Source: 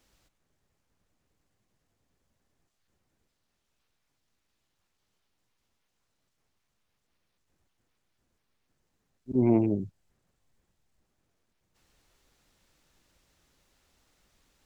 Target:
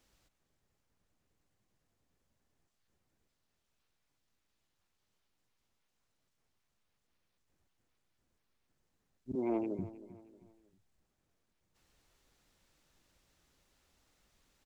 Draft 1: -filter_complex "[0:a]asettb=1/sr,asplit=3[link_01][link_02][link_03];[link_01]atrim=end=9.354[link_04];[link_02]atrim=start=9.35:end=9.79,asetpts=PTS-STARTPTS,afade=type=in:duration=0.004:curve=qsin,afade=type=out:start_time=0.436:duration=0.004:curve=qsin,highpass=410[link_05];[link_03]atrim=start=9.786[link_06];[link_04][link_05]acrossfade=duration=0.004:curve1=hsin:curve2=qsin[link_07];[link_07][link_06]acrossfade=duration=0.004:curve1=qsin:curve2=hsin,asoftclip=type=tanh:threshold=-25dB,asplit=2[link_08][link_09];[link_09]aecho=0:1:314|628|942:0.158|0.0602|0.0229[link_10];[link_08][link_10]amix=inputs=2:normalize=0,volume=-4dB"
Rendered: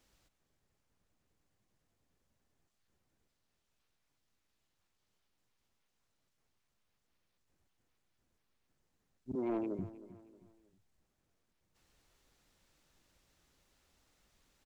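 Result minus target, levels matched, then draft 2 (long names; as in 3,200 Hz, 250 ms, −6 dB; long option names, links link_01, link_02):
soft clipping: distortion +10 dB
-filter_complex "[0:a]asettb=1/sr,asplit=3[link_01][link_02][link_03];[link_01]atrim=end=9.354[link_04];[link_02]atrim=start=9.35:end=9.79,asetpts=PTS-STARTPTS,afade=type=in:duration=0.004:curve=qsin,afade=type=out:start_time=0.436:duration=0.004:curve=qsin,highpass=410[link_05];[link_03]atrim=start=9.786[link_06];[link_04][link_05]acrossfade=duration=0.004:curve1=hsin:curve2=qsin[link_07];[link_07][link_06]acrossfade=duration=0.004:curve1=qsin:curve2=hsin,asoftclip=type=tanh:threshold=-18dB,asplit=2[link_08][link_09];[link_09]aecho=0:1:314|628|942:0.158|0.0602|0.0229[link_10];[link_08][link_10]amix=inputs=2:normalize=0,volume=-4dB"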